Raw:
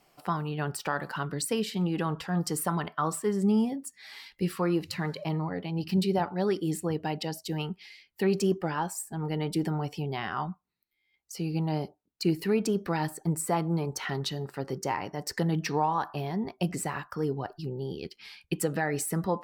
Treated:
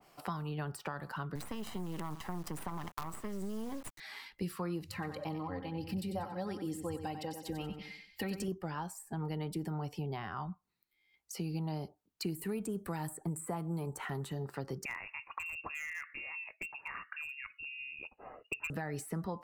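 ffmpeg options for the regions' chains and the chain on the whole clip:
ffmpeg -i in.wav -filter_complex "[0:a]asettb=1/sr,asplit=3[link_01][link_02][link_03];[link_01]atrim=end=1.354[link_04];[link_02]atrim=start=1.35:end=4,asetpts=PTS-STARTPTS,afade=type=in:duration=0.004:curve=qsin,afade=type=out:start_time=2.646:duration=0.004:curve=qsin,aecho=1:1:1:0.92,atrim=end_sample=116865,acompressor=threshold=-28dB:ratio=4:attack=3.2:release=140:knee=1:detection=peak,acrusher=bits=5:dc=4:mix=0:aa=0.000001[link_05];[link_03]atrim=start=3.996[link_06];[link_04][link_05]acrossfade=duration=0.004:curve1=hsin:curve2=qsin[link_07];[link_07][link_06]acrossfade=duration=0.004:curve1=qsin:curve2=hsin,asettb=1/sr,asplit=3[link_08][link_09][link_10];[link_08]atrim=end=4.934[link_11];[link_09]atrim=start=4.93:end=8.48,asetpts=PTS-STARTPTS,afade=type=in:duration=0.004:curve=qsin,afade=type=out:start_time=3.546:duration=0.004:curve=qsin,lowshelf=frequency=140:width_type=q:width=3:gain=6,aecho=1:1:3.8:0.64,atrim=end_sample=156555,aecho=1:1:93|186|279|372:0.316|0.111|0.0387|0.0136,atrim=end_sample=156555[link_12];[link_10]atrim=start=8.476[link_13];[link_11][link_12]acrossfade=duration=0.004:curve1=hsin:curve2=qsin[link_14];[link_14][link_13]acrossfade=duration=0.004:curve1=qsin:curve2=hsin,asettb=1/sr,asplit=3[link_15][link_16][link_17];[link_15]atrim=end=12.354[link_18];[link_16]atrim=start=12.35:end=14.33,asetpts=PTS-STARTPTS,afade=type=in:duration=0.004:curve=qsin,afade=type=out:start_time=1.976:duration=0.004:curve=qsin,acrossover=split=3300[link_19][link_20];[link_20]acompressor=threshold=-39dB:ratio=4:attack=1:release=60[link_21];[link_19][link_21]amix=inputs=2:normalize=0,highshelf=frequency=6600:width_type=q:width=3:gain=7.5[link_22];[link_17]atrim=start=14.326[link_23];[link_18][link_22]acrossfade=duration=0.004:curve1=hsin:curve2=qsin[link_24];[link_24][link_23]acrossfade=duration=0.004:curve1=qsin:curve2=hsin,asettb=1/sr,asplit=3[link_25][link_26][link_27];[link_25]atrim=end=14.854[link_28];[link_26]atrim=start=14.85:end=18.7,asetpts=PTS-STARTPTS,afade=type=in:duration=0.004:curve=qsin,afade=type=out:start_time=3.846:duration=0.004:curve=qsin,lowpass=frequency=2500:width_type=q:width=0.5098,lowpass=frequency=2500:width_type=q:width=0.6013,lowpass=frequency=2500:width_type=q:width=0.9,lowpass=frequency=2500:width_type=q:width=2.563,afreqshift=-2900,asoftclip=type=hard:threshold=-21dB[link_29];[link_27]atrim=start=18.696[link_30];[link_28][link_29]acrossfade=duration=0.004:curve1=hsin:curve2=qsin[link_31];[link_31][link_30]acrossfade=duration=0.004:curve1=qsin:curve2=hsin,equalizer=frequency=1100:width_type=o:width=0.77:gain=2.5,acrossover=split=130|3400|7000[link_32][link_33][link_34][link_35];[link_32]acompressor=threshold=-45dB:ratio=4[link_36];[link_33]acompressor=threshold=-40dB:ratio=4[link_37];[link_34]acompressor=threshold=-56dB:ratio=4[link_38];[link_35]acompressor=threshold=-46dB:ratio=4[link_39];[link_36][link_37][link_38][link_39]amix=inputs=4:normalize=0,adynamicequalizer=threshold=0.00158:dfrequency=2000:dqfactor=0.7:tfrequency=2000:tqfactor=0.7:attack=5:release=100:ratio=0.375:range=3.5:mode=cutabove:tftype=highshelf,volume=1dB" out.wav

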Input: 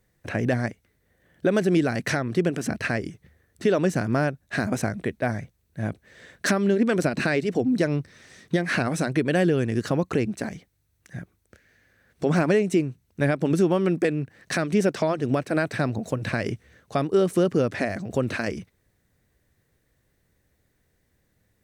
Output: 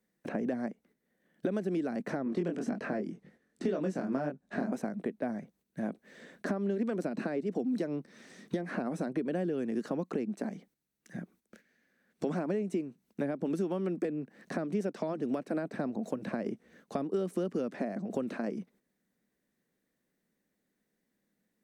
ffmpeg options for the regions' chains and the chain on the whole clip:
ffmpeg -i in.wav -filter_complex "[0:a]asettb=1/sr,asplit=3[link_01][link_02][link_03];[link_01]atrim=end=2.244[link_04];[link_02]atrim=start=2.24:end=4.72,asetpts=PTS-STARTPTS,afade=type=in:duration=0.004:curve=qsin,afade=type=out:start_time=2.476:duration=0.004:curve=qsin,lowpass=9000,acontrast=37,flanger=delay=20:depth=4:speed=1.9[link_05];[link_03]atrim=start=4.716[link_06];[link_04][link_05]acrossfade=duration=0.004:curve1=hsin:curve2=qsin[link_07];[link_07][link_06]acrossfade=duration=0.004:curve1=qsin:curve2=hsin,agate=range=-9dB:threshold=-56dB:ratio=16:detection=peak,lowshelf=frequency=140:width_type=q:width=3:gain=-13.5,acrossover=split=360|1100[link_08][link_09][link_10];[link_08]acompressor=threshold=-36dB:ratio=4[link_11];[link_09]acompressor=threshold=-33dB:ratio=4[link_12];[link_10]acompressor=threshold=-53dB:ratio=4[link_13];[link_11][link_12][link_13]amix=inputs=3:normalize=0,volume=-2dB" out.wav

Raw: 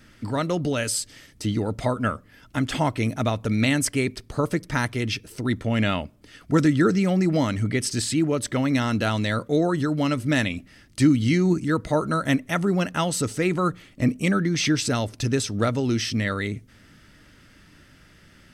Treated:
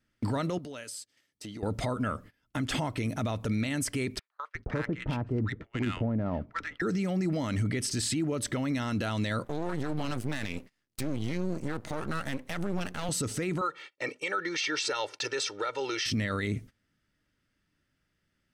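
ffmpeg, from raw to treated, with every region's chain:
ffmpeg -i in.wav -filter_complex "[0:a]asettb=1/sr,asplit=3[link_01][link_02][link_03];[link_01]atrim=end=0.584[link_04];[link_02]atrim=start=0.58:end=1.63,asetpts=PTS-STARTPTS,afade=type=in:duration=0.004:curve=qsin,afade=type=out:start_time=1.046:duration=0.004:curve=qsin,highpass=frequency=320:poles=1,acompressor=threshold=-38dB:ratio=16:attack=3.2:release=140:knee=1:detection=peak[link_05];[link_03]atrim=start=1.626[link_06];[link_04][link_05]acrossfade=duration=0.004:curve1=hsin:curve2=qsin[link_07];[link_07][link_06]acrossfade=duration=0.004:curve1=qsin:curve2=hsin,asettb=1/sr,asplit=3[link_08][link_09][link_10];[link_08]atrim=end=4.194[link_11];[link_09]atrim=start=4.19:end=6.82,asetpts=PTS-STARTPTS,afade=type=in:duration=0.004:curve=qsin,afade=type=out:start_time=2.626:duration=0.004:curve=qsin,lowpass=frequency=2500:poles=1,acrossover=split=1200[link_12][link_13];[link_12]adelay=360[link_14];[link_14][link_13]amix=inputs=2:normalize=0,atrim=end_sample=115983,adynamicsmooth=sensitivity=2:basefreq=1800[link_15];[link_10]atrim=start=6.816[link_16];[link_11][link_15]acrossfade=duration=0.004:curve1=hsin:curve2=qsin[link_17];[link_17][link_16]acrossfade=duration=0.004:curve1=qsin:curve2=hsin,asettb=1/sr,asplit=3[link_18][link_19][link_20];[link_18]atrim=end=9.444[link_21];[link_19]atrim=start=9.44:end=13.09,asetpts=PTS-STARTPTS,afade=type=in:duration=0.004:curve=qsin,afade=type=out:start_time=3.646:duration=0.004:curve=qsin,highpass=100,aeval=exprs='max(val(0),0)':channel_layout=same[link_22];[link_20]atrim=start=13.086[link_23];[link_21][link_22]acrossfade=duration=0.004:curve1=hsin:curve2=qsin[link_24];[link_24][link_23]acrossfade=duration=0.004:curve1=qsin:curve2=hsin,asettb=1/sr,asplit=3[link_25][link_26][link_27];[link_25]atrim=end=13.614[link_28];[link_26]atrim=start=13.61:end=16.06,asetpts=PTS-STARTPTS,afade=type=in:duration=0.004:curve=qsin,afade=type=out:start_time=2.446:duration=0.004:curve=qsin,highpass=650,lowpass=4900,aecho=1:1:2.2:0.92,atrim=end_sample=108045[link_29];[link_27]atrim=start=16.056[link_30];[link_28][link_29]acrossfade=duration=0.004:curve1=hsin:curve2=qsin[link_31];[link_31][link_30]acrossfade=duration=0.004:curve1=qsin:curve2=hsin,agate=range=-26dB:threshold=-43dB:ratio=16:detection=peak,acompressor=threshold=-25dB:ratio=6,alimiter=limit=-23.5dB:level=0:latency=1:release=26,volume=1.5dB" out.wav

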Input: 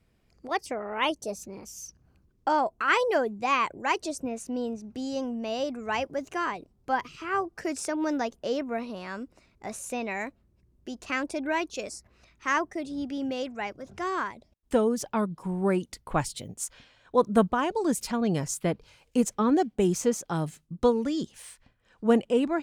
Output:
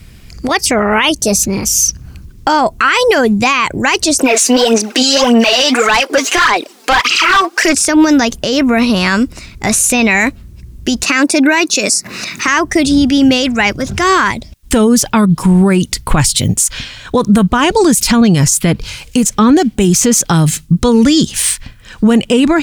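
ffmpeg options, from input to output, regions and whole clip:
ffmpeg -i in.wav -filter_complex "[0:a]asettb=1/sr,asplit=3[link_01][link_02][link_03];[link_01]atrim=end=4.194[link_04];[link_02]atrim=start=4.19:end=7.75,asetpts=PTS-STARTPTS,afade=type=in:duration=0.004:curve=qsin,afade=type=out:start_time=3.556:duration=0.004:curve=qsin,highpass=frequency=310:width=0.5412,highpass=frequency=310:width=1.3066,aphaser=in_gain=1:out_gain=1:delay=4.5:decay=0.67:speed=1.7:type=sinusoidal,asplit=2[link_05][link_06];[link_06]highpass=frequency=720:poles=1,volume=20dB,asoftclip=type=tanh:threshold=-7.5dB[link_07];[link_05][link_07]amix=inputs=2:normalize=0,lowpass=frequency=5100:poles=1,volume=-6dB[link_08];[link_03]atrim=start=7.746[link_09];[link_04][link_08]acrossfade=duration=0.004:curve1=hsin:curve2=qsin[link_10];[link_10][link_09]acrossfade=duration=0.004:curve1=qsin:curve2=hsin,asettb=1/sr,asplit=3[link_11][link_12][link_13];[link_11]atrim=end=11.034[link_14];[link_12]atrim=start=11.03:end=12.48,asetpts=PTS-STARTPTS,afade=type=in:duration=0.004:curve=qsin,afade=type=out:start_time=1.446:duration=0.004:curve=qsin,highpass=frequency=170:width=0.5412,highpass=frequency=170:width=1.3066,acompressor=mode=upward:threshold=-40dB:ratio=2.5:attack=3.2:release=140:knee=2.83:detection=peak,bandreject=frequency=3200:width=7.3[link_15];[link_13]atrim=start=12.476[link_16];[link_14][link_15]acrossfade=duration=0.004:curve1=hsin:curve2=qsin[link_17];[link_17][link_16]acrossfade=duration=0.004:curve1=qsin:curve2=hsin,equalizer=frequency=590:width_type=o:width=2.7:gain=-13.5,acompressor=threshold=-34dB:ratio=6,alimiter=level_in=34.5dB:limit=-1dB:release=50:level=0:latency=1,volume=-1dB" out.wav

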